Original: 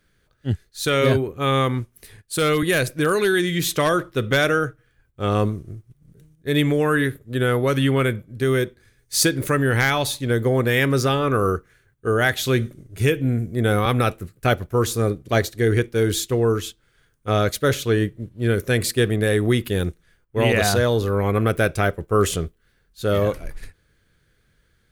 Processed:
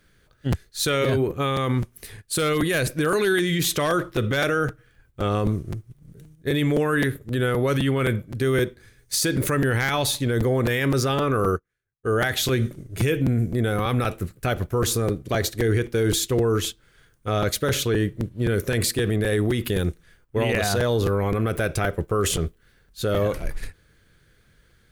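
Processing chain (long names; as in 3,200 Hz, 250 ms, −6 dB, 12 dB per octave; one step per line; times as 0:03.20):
brickwall limiter −18 dBFS, peak gain reduction 11 dB
regular buffer underruns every 0.26 s, samples 256, repeat, from 0:00.52
0:11.51–0:12.08: expander for the loud parts 2.5 to 1, over −44 dBFS
level +4.5 dB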